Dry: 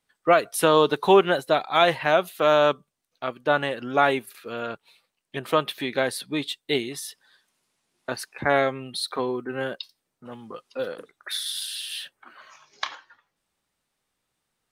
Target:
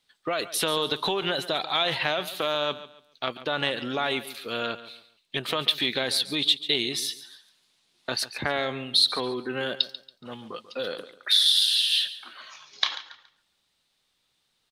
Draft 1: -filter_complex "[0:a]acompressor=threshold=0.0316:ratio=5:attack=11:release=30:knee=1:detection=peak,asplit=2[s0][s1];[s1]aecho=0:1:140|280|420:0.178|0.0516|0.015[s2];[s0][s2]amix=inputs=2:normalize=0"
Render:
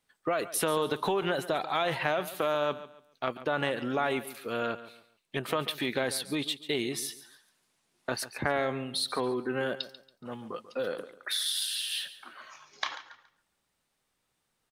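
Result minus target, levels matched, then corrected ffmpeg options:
4 kHz band -5.5 dB
-filter_complex "[0:a]acompressor=threshold=0.0316:ratio=5:attack=11:release=30:knee=1:detection=peak,equalizer=f=3800:w=1.2:g=13,asplit=2[s0][s1];[s1]aecho=0:1:140|280|420:0.178|0.0516|0.015[s2];[s0][s2]amix=inputs=2:normalize=0"

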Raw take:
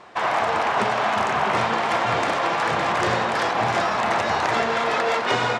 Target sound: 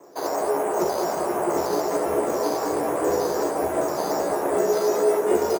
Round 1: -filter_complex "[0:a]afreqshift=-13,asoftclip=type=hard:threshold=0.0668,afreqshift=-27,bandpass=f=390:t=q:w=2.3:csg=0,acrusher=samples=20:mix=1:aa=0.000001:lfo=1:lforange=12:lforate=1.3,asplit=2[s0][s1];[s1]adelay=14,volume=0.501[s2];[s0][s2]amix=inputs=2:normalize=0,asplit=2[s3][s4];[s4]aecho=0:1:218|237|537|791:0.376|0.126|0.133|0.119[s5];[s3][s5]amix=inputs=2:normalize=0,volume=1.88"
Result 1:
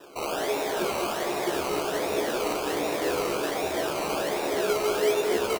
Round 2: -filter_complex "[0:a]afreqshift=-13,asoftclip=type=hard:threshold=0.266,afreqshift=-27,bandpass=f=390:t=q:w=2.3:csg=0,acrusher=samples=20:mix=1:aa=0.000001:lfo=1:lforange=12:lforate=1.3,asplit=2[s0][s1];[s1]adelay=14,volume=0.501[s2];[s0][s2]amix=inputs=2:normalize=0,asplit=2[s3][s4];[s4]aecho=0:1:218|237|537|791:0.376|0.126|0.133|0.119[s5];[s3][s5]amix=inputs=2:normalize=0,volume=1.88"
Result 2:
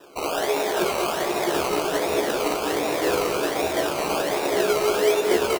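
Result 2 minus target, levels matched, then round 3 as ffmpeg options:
decimation with a swept rate: distortion +13 dB
-filter_complex "[0:a]afreqshift=-13,asoftclip=type=hard:threshold=0.266,afreqshift=-27,bandpass=f=390:t=q:w=2.3:csg=0,acrusher=samples=6:mix=1:aa=0.000001:lfo=1:lforange=3.6:lforate=1.3,asplit=2[s0][s1];[s1]adelay=14,volume=0.501[s2];[s0][s2]amix=inputs=2:normalize=0,asplit=2[s3][s4];[s4]aecho=0:1:218|237|537|791:0.376|0.126|0.133|0.119[s5];[s3][s5]amix=inputs=2:normalize=0,volume=1.88"

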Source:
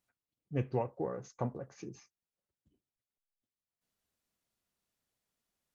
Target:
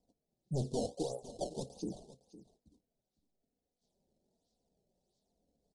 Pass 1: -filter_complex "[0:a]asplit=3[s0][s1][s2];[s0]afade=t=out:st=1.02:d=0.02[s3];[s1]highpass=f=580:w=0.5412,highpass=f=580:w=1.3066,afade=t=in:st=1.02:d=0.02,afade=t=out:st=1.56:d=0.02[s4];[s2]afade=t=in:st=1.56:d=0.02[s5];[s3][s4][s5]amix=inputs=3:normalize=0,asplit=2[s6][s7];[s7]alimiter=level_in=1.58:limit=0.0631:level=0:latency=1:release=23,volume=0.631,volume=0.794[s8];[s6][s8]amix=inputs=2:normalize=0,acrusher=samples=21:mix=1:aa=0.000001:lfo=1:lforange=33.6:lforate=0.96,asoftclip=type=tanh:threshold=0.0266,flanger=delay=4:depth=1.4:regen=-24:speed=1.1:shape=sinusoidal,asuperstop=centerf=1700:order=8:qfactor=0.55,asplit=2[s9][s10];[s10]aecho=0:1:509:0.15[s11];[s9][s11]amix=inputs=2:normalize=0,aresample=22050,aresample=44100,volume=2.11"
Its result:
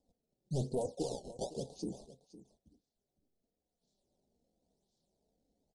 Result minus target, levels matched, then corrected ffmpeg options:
decimation with a swept rate: distortion -7 dB
-filter_complex "[0:a]asplit=3[s0][s1][s2];[s0]afade=t=out:st=1.02:d=0.02[s3];[s1]highpass=f=580:w=0.5412,highpass=f=580:w=1.3066,afade=t=in:st=1.02:d=0.02,afade=t=out:st=1.56:d=0.02[s4];[s2]afade=t=in:st=1.56:d=0.02[s5];[s3][s4][s5]amix=inputs=3:normalize=0,asplit=2[s6][s7];[s7]alimiter=level_in=1.58:limit=0.0631:level=0:latency=1:release=23,volume=0.631,volume=0.794[s8];[s6][s8]amix=inputs=2:normalize=0,acrusher=samples=21:mix=1:aa=0.000001:lfo=1:lforange=33.6:lforate=1.5,asoftclip=type=tanh:threshold=0.0266,flanger=delay=4:depth=1.4:regen=-24:speed=1.1:shape=sinusoidal,asuperstop=centerf=1700:order=8:qfactor=0.55,asplit=2[s9][s10];[s10]aecho=0:1:509:0.15[s11];[s9][s11]amix=inputs=2:normalize=0,aresample=22050,aresample=44100,volume=2.11"

